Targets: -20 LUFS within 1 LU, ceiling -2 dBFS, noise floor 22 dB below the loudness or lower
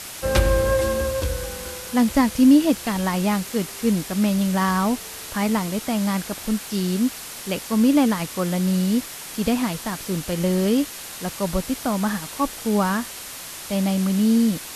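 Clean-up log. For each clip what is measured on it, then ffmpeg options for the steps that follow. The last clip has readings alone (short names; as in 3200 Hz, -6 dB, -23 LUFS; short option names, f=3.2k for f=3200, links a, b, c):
noise floor -36 dBFS; noise floor target -44 dBFS; loudness -22.0 LUFS; peak -5.0 dBFS; loudness target -20.0 LUFS
-> -af "afftdn=nr=8:nf=-36"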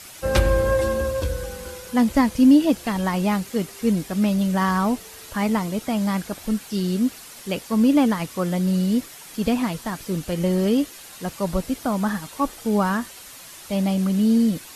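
noise floor -42 dBFS; noise floor target -45 dBFS
-> -af "afftdn=nr=6:nf=-42"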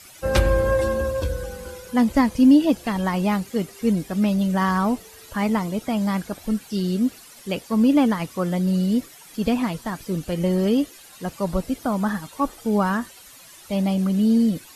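noise floor -46 dBFS; loudness -22.5 LUFS; peak -5.5 dBFS; loudness target -20.0 LUFS
-> -af "volume=2.5dB"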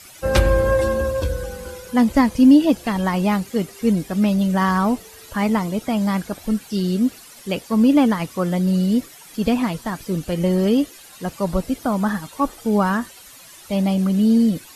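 loudness -20.0 LUFS; peak -3.0 dBFS; noise floor -44 dBFS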